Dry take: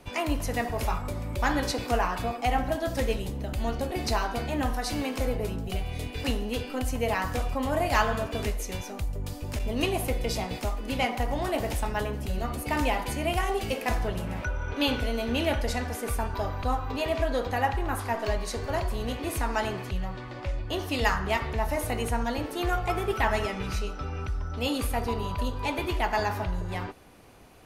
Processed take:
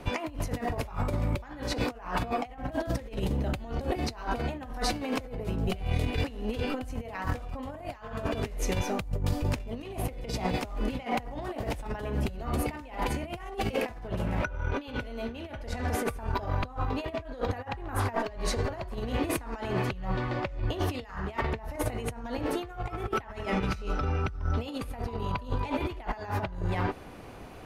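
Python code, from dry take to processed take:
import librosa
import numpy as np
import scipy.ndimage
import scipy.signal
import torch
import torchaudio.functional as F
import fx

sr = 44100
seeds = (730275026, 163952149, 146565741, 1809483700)

y = fx.high_shelf(x, sr, hz=4000.0, db=-10.0)
y = fx.over_compress(y, sr, threshold_db=-34.0, ratio=-0.5)
y = y * 10.0 ** (3.0 / 20.0)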